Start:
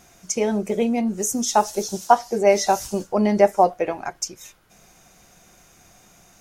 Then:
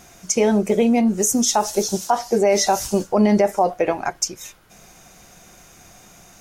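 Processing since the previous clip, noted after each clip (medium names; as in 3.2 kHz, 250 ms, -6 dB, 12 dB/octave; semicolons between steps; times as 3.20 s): peak limiter -13 dBFS, peak gain reduction 11.5 dB; trim +5.5 dB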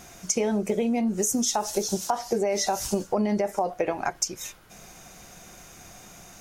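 compression, threshold -22 dBFS, peak gain reduction 10 dB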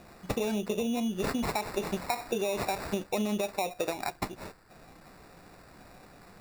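sample-and-hold 14×; trim -5.5 dB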